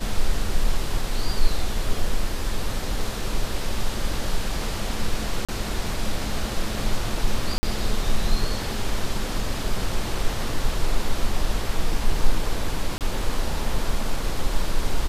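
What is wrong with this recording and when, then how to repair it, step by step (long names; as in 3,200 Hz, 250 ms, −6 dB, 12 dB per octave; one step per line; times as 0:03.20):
0:05.45–0:05.49: drop-out 36 ms
0:07.58–0:07.63: drop-out 50 ms
0:12.98–0:13.01: drop-out 28 ms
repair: repair the gap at 0:05.45, 36 ms
repair the gap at 0:07.58, 50 ms
repair the gap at 0:12.98, 28 ms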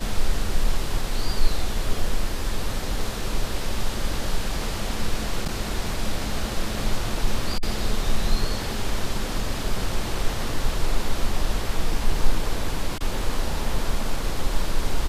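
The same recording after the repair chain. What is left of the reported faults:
none of them is left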